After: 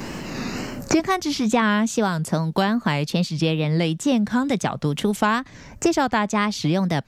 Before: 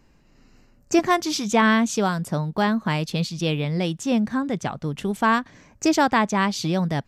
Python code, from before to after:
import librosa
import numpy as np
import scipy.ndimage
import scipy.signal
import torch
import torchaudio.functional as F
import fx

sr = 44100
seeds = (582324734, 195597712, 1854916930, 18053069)

y = fx.wow_flutter(x, sr, seeds[0], rate_hz=2.1, depth_cents=110.0)
y = fx.band_squash(y, sr, depth_pct=100)